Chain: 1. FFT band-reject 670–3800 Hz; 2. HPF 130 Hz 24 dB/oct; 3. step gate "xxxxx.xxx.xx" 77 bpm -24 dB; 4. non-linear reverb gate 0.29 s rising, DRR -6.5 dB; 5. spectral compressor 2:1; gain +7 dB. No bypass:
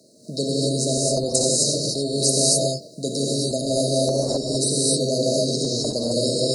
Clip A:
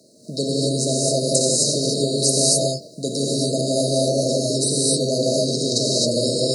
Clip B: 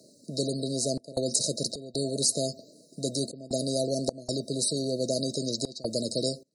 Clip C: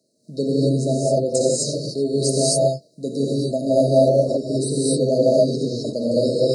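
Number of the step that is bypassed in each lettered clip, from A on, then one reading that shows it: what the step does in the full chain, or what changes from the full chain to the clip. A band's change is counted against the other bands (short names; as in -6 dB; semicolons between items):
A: 3, loudness change +1.5 LU; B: 4, crest factor change +3.0 dB; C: 5, 4 kHz band -10.0 dB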